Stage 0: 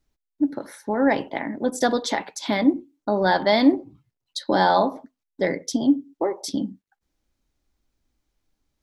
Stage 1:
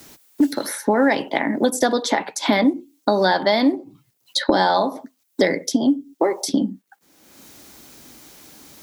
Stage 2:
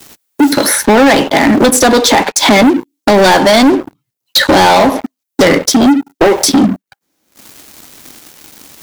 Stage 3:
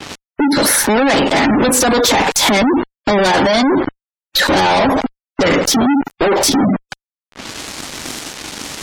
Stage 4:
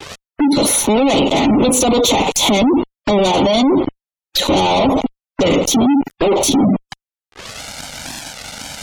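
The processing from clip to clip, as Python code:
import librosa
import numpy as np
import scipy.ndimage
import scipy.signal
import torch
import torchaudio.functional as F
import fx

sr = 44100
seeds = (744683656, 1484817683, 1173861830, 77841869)

y1 = scipy.signal.sosfilt(scipy.signal.butter(2, 170.0, 'highpass', fs=sr, output='sos'), x)
y1 = fx.high_shelf(y1, sr, hz=7800.0, db=10.5)
y1 = fx.band_squash(y1, sr, depth_pct=100)
y1 = y1 * librosa.db_to_amplitude(2.5)
y2 = fx.leveller(y1, sr, passes=5)
y3 = fx.fuzz(y2, sr, gain_db=36.0, gate_db=-34.0)
y3 = fx.spec_gate(y3, sr, threshold_db=-25, keep='strong')
y3 = fx.env_lowpass(y3, sr, base_hz=2800.0, full_db=-17.0)
y3 = y3 * librosa.db_to_amplitude(2.0)
y4 = fx.env_flanger(y3, sr, rest_ms=2.7, full_db=-13.0)
y4 = y4 * librosa.db_to_amplitude(1.0)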